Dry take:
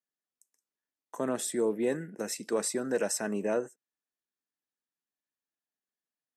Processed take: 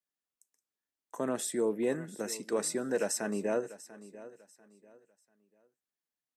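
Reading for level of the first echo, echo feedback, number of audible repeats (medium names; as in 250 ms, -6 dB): -17.0 dB, 29%, 2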